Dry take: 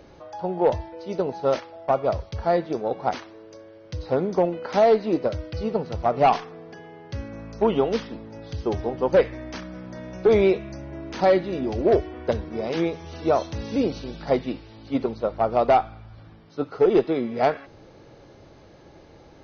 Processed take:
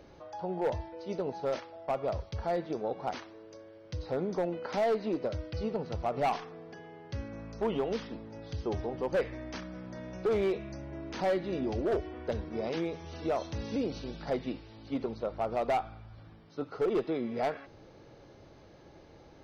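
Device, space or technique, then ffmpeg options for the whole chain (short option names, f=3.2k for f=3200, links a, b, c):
clipper into limiter: -af "asoftclip=type=hard:threshold=-14dB,alimiter=limit=-18.5dB:level=0:latency=1:release=77,volume=-5.5dB"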